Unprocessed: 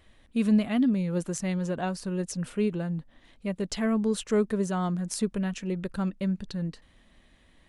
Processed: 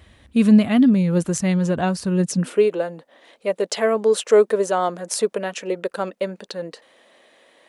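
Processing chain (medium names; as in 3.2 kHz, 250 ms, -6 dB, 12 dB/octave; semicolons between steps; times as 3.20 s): high-pass sweep 71 Hz -> 500 Hz, 2.06–2.64 s; trim +8.5 dB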